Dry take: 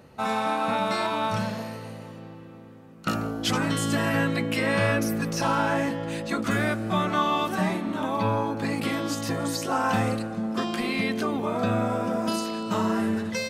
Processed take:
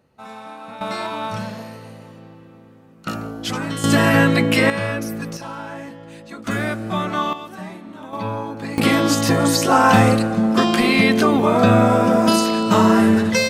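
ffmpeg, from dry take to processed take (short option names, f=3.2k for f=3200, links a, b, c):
-af "asetnsamples=n=441:p=0,asendcmd='0.81 volume volume 0dB;3.84 volume volume 10dB;4.7 volume volume -0.5dB;5.37 volume volume -8dB;6.47 volume volume 2dB;7.33 volume volume -8dB;8.13 volume volume -1dB;8.78 volume volume 11.5dB',volume=-10.5dB"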